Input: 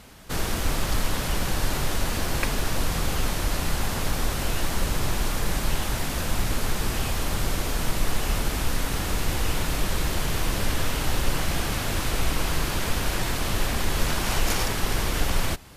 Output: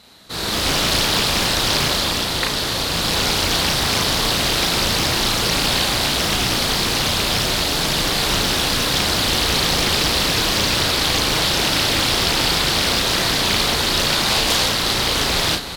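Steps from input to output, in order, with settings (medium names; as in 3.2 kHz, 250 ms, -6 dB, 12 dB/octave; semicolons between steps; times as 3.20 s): high-pass 160 Hz 6 dB/octave; peaking EQ 4 kHz +15 dB 0.31 oct; doubling 35 ms -2.5 dB; on a send: delay 379 ms -11.5 dB; on the sum: level rider gain up to 11.5 dB; loudspeaker Doppler distortion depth 0.79 ms; trim -3 dB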